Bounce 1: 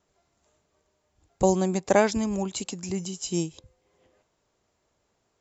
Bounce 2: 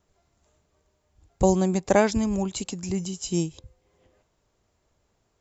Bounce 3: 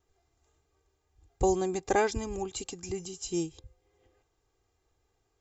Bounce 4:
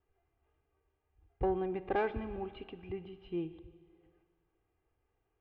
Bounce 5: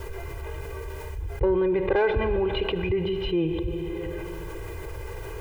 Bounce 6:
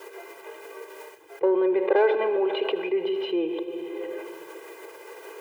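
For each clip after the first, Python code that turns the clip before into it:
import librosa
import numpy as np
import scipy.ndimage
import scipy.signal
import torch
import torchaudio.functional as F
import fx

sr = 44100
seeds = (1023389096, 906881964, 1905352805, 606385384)

y1 = fx.low_shelf(x, sr, hz=110.0, db=11.5)
y2 = y1 + 0.67 * np.pad(y1, (int(2.5 * sr / 1000.0), 0))[:len(y1)]
y2 = F.gain(torch.from_numpy(y2), -6.5).numpy()
y3 = scipy.signal.sosfilt(scipy.signal.butter(8, 3000.0, 'lowpass', fs=sr, output='sos'), y2)
y3 = 10.0 ** (-16.0 / 20.0) * np.tanh(y3 / 10.0 ** (-16.0 / 20.0))
y3 = fx.rev_schroeder(y3, sr, rt60_s=1.8, comb_ms=25, drr_db=13.0)
y3 = F.gain(torch.from_numpy(y3), -5.0).numpy()
y4 = y3 + 0.97 * np.pad(y3, (int(2.0 * sr / 1000.0), 0))[:len(y3)]
y4 = fx.env_flatten(y4, sr, amount_pct=70)
y4 = F.gain(torch.from_numpy(y4), 5.0).numpy()
y5 = scipy.signal.sosfilt(scipy.signal.butter(4, 340.0, 'highpass', fs=sr, output='sos'), y4)
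y5 = fx.dynamic_eq(y5, sr, hz=560.0, q=0.77, threshold_db=-38.0, ratio=4.0, max_db=6)
y5 = y5 + 10.0 ** (-18.5 / 20.0) * np.pad(y5, (int(80 * sr / 1000.0), 0))[:len(y5)]
y5 = F.gain(torch.from_numpy(y5), -2.0).numpy()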